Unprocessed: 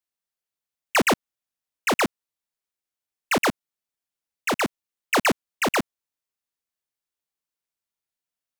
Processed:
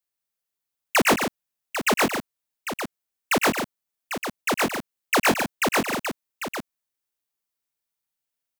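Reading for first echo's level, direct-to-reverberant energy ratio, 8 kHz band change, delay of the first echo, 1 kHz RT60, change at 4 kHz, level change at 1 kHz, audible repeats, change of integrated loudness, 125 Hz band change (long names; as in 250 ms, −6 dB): −11.0 dB, no reverb audible, +3.0 dB, 102 ms, no reverb audible, +2.0 dB, +1.5 dB, 3, 0.0 dB, +1.5 dB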